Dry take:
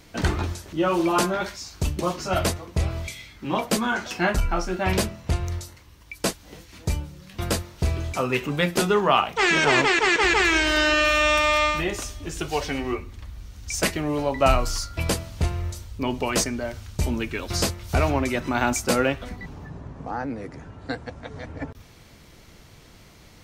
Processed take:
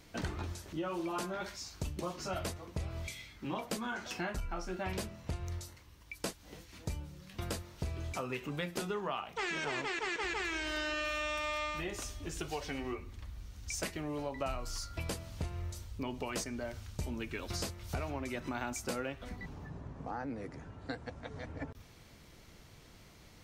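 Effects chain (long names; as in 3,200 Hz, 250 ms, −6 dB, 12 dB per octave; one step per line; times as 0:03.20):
downward compressor 4 to 1, threshold −28 dBFS, peak gain reduction 12.5 dB
level −7.5 dB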